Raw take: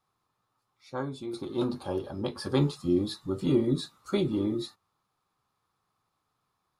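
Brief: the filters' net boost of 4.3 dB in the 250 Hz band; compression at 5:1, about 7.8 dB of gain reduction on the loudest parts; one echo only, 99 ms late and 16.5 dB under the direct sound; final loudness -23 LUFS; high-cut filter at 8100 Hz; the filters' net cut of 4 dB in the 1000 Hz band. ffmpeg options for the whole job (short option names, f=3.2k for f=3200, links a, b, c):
-af "lowpass=8.1k,equalizer=f=250:t=o:g=6,equalizer=f=1k:t=o:g=-5.5,acompressor=threshold=-25dB:ratio=5,aecho=1:1:99:0.15,volume=8.5dB"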